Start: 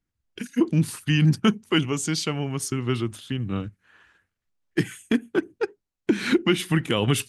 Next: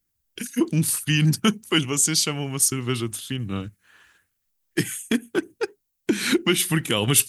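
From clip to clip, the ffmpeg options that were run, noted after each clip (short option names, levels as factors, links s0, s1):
-af "aemphasis=mode=production:type=75fm"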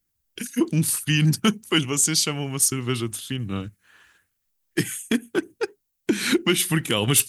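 -af "volume=2.99,asoftclip=hard,volume=0.335"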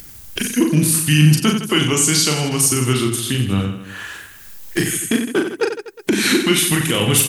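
-af "alimiter=limit=0.188:level=0:latency=1,acompressor=mode=upward:threshold=0.0562:ratio=2.5,aecho=1:1:40|92|159.6|247.5|361.7:0.631|0.398|0.251|0.158|0.1,volume=2.24"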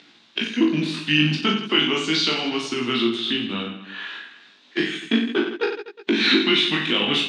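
-af "flanger=delay=17:depth=3.4:speed=0.35,highpass=f=220:w=0.5412,highpass=f=220:w=1.3066,equalizer=f=230:t=q:w=4:g=3,equalizer=f=520:t=q:w=4:g=-6,equalizer=f=2600:t=q:w=4:g=3,equalizer=f=3700:t=q:w=4:g=9,lowpass=f=4200:w=0.5412,lowpass=f=4200:w=1.3066"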